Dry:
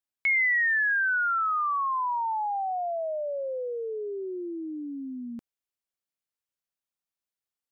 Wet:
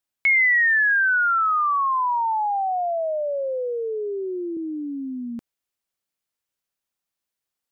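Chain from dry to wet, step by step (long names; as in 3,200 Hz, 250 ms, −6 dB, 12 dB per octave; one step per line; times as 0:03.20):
0:02.38–0:04.57: high-pass filter 110 Hz 24 dB per octave
level +6 dB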